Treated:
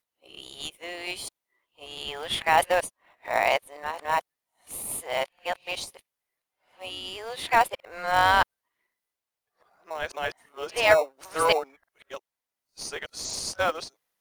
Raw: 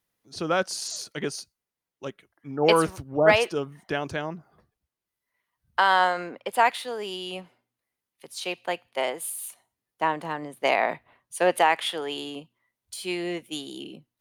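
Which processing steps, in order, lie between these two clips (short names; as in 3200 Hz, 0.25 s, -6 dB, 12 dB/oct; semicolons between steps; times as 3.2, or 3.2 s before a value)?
whole clip reversed; HPF 550 Hz 24 dB/oct; in parallel at -12 dB: sample-rate reducer 1600 Hz, jitter 0%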